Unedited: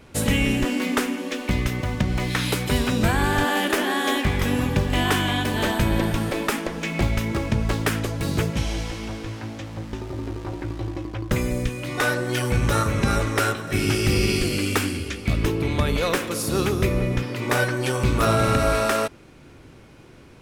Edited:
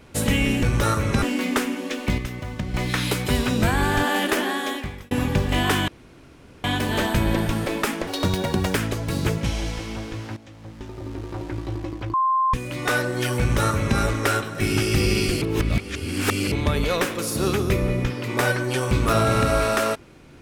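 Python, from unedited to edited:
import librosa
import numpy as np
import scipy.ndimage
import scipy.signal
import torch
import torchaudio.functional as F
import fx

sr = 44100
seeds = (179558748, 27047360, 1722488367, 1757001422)

y = fx.edit(x, sr, fx.clip_gain(start_s=1.59, length_s=0.56, db=-6.0),
    fx.fade_out_span(start_s=3.79, length_s=0.73),
    fx.insert_room_tone(at_s=5.29, length_s=0.76),
    fx.speed_span(start_s=6.72, length_s=1.15, speed=1.7),
    fx.fade_in_from(start_s=9.49, length_s=1.08, floor_db=-13.5),
    fx.bleep(start_s=11.26, length_s=0.4, hz=1050.0, db=-17.0),
    fx.duplicate(start_s=12.52, length_s=0.59, to_s=0.63),
    fx.reverse_span(start_s=14.54, length_s=1.1), tone=tone)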